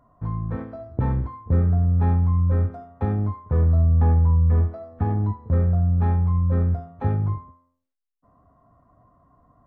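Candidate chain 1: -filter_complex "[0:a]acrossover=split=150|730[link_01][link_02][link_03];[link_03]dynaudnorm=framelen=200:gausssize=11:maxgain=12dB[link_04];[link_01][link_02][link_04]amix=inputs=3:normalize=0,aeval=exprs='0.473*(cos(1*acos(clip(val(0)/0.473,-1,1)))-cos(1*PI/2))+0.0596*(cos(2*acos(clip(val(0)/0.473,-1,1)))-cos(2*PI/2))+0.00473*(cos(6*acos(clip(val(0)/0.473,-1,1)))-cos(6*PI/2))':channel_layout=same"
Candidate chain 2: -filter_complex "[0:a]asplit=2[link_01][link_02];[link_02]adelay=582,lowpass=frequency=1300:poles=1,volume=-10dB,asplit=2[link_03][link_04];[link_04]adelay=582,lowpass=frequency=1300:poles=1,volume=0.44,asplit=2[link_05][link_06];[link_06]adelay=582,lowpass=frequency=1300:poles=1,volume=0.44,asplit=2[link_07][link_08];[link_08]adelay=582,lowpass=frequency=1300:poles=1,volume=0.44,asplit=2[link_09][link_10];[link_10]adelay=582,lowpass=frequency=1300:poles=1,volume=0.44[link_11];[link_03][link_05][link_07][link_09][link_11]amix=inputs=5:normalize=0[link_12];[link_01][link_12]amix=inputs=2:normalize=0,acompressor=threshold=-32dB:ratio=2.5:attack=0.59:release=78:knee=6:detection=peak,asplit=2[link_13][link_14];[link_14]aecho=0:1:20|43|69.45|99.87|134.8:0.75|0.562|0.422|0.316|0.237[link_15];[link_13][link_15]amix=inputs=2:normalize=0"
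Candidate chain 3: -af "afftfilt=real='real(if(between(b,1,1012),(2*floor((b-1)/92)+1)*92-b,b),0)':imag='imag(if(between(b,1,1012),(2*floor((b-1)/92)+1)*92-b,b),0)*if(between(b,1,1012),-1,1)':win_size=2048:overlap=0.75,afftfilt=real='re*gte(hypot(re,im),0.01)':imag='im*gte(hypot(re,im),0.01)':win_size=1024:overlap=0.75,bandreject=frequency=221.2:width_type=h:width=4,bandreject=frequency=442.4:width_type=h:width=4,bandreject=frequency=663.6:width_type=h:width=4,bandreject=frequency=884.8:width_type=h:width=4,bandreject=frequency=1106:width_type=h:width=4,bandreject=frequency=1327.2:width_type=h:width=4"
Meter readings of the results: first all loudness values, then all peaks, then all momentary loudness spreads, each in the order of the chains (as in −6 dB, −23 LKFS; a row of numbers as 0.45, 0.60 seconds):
−21.5, −28.0, −18.0 LKFS; −5.0, −15.5, −8.5 dBFS; 11, 11, 12 LU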